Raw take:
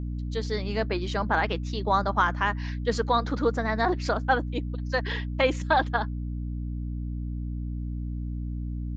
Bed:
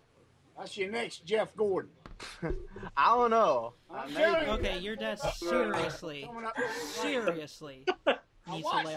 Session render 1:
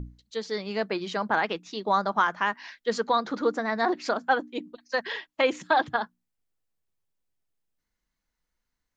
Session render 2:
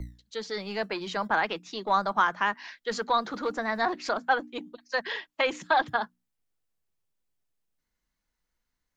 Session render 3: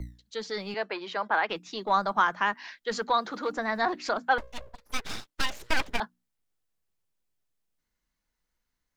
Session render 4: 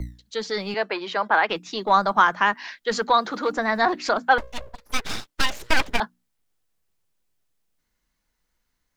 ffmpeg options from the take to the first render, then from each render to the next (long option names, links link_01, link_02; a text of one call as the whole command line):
ffmpeg -i in.wav -af "bandreject=frequency=60:width_type=h:width=6,bandreject=frequency=120:width_type=h:width=6,bandreject=frequency=180:width_type=h:width=6,bandreject=frequency=240:width_type=h:width=6,bandreject=frequency=300:width_type=h:width=6" out.wav
ffmpeg -i in.wav -filter_complex "[0:a]acrossover=split=120|580|2500[link_01][link_02][link_03][link_04];[link_01]acrusher=samples=21:mix=1:aa=0.000001:lfo=1:lforange=21:lforate=0.35[link_05];[link_02]asoftclip=type=tanh:threshold=-33.5dB[link_06];[link_05][link_06][link_03][link_04]amix=inputs=4:normalize=0" out.wav
ffmpeg -i in.wav -filter_complex "[0:a]asettb=1/sr,asplit=3[link_01][link_02][link_03];[link_01]atrim=end=0.744[link_04];[link_02]atrim=start=0.74:end=1.5,asetpts=PTS-STARTPTS,afade=type=in:duration=0.004:curve=qsin,afade=type=out:start_time=0.756:duration=0.004:curve=qsin,highpass=350,lowpass=3900[link_05];[link_03]atrim=start=1.496[link_06];[link_04][link_05]acrossfade=duration=0.004:curve1=hsin:curve2=qsin[link_07];[link_07][link_06]acrossfade=duration=0.004:curve1=qsin:curve2=hsin,asettb=1/sr,asplit=3[link_08][link_09][link_10];[link_08]atrim=end=3.134[link_11];[link_09]atrim=start=3.13:end=3.53,asetpts=PTS-STARTPTS,afade=type=in:duration=0.004:curve=qsin,afade=type=out:start_time=0.396:duration=0.004:curve=qsin,highpass=frequency=210:poles=1[link_12];[link_10]atrim=start=3.526[link_13];[link_11][link_12]acrossfade=duration=0.004:curve1=hsin:curve2=qsin[link_14];[link_14][link_13]acrossfade=duration=0.004:curve1=qsin:curve2=hsin,asettb=1/sr,asplit=3[link_15][link_16][link_17];[link_15]atrim=end=4.384[link_18];[link_16]atrim=start=4.38:end=6,asetpts=PTS-STARTPTS,afade=type=in:duration=0.004:curve=qsin,afade=type=out:start_time=1.616:duration=0.004:curve=qsin,aeval=exprs='abs(val(0))':channel_layout=same[link_19];[link_17]atrim=start=5.996[link_20];[link_18][link_19]acrossfade=duration=0.004:curve1=hsin:curve2=qsin[link_21];[link_21][link_20]acrossfade=duration=0.004:curve1=qsin:curve2=hsin" out.wav
ffmpeg -i in.wav -af "volume=6.5dB" out.wav